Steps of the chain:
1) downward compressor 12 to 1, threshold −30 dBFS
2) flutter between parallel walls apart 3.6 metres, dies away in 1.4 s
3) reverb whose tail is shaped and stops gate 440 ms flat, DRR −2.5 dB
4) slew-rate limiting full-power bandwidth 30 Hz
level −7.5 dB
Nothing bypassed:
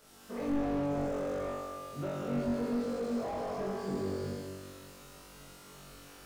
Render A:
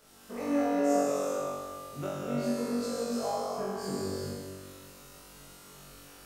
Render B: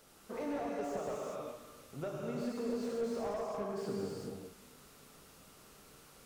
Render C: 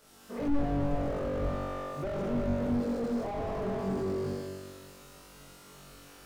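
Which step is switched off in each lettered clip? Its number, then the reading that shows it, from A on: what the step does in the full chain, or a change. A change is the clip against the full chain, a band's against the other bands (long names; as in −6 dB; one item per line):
4, distortion level −1 dB
2, 125 Hz band −4.5 dB
1, average gain reduction 7.5 dB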